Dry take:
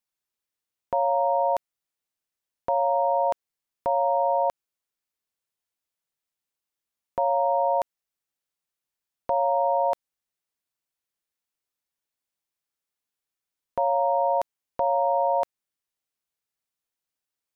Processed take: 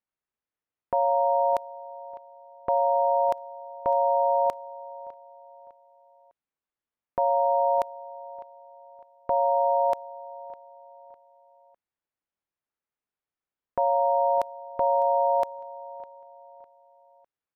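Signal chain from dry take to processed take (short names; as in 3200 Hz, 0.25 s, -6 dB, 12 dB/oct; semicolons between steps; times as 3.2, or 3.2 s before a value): feedback echo 0.604 s, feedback 38%, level -18 dB; low-pass opened by the level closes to 2000 Hz, open at -18.5 dBFS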